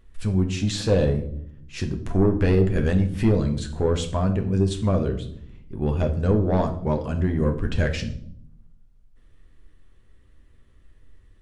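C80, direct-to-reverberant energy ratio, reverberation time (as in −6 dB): 15.0 dB, 4.0 dB, 0.70 s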